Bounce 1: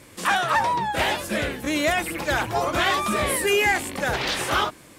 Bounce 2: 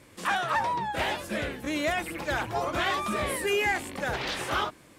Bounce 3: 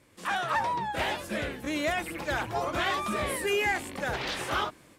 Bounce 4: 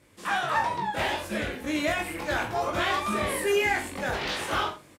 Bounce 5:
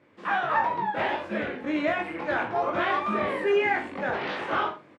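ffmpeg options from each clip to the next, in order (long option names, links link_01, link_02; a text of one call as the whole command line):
ffmpeg -i in.wav -af "highshelf=frequency=5100:gain=-5,volume=-5.5dB" out.wav
ffmpeg -i in.wav -af "dynaudnorm=framelen=190:gausssize=3:maxgain=6.5dB,volume=-7.5dB" out.wav
ffmpeg -i in.wav -af "aecho=1:1:20|42|66.2|92.82|122.1:0.631|0.398|0.251|0.158|0.1" out.wav
ffmpeg -i in.wav -af "highpass=170,lowpass=2100,volume=2dB" out.wav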